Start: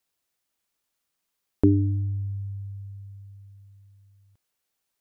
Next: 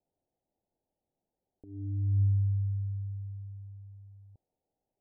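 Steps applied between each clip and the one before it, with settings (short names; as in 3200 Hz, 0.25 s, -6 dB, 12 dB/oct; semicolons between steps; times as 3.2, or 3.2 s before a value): steep low-pass 850 Hz 72 dB/oct; negative-ratio compressor -29 dBFS, ratio -0.5; gain +1 dB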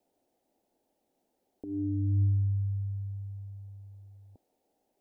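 EQ curve 150 Hz 0 dB, 250 Hz +13 dB, 430 Hz +11 dB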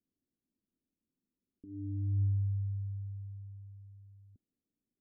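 ladder low-pass 290 Hz, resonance 20%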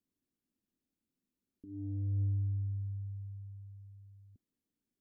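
soft clip -26.5 dBFS, distortion -20 dB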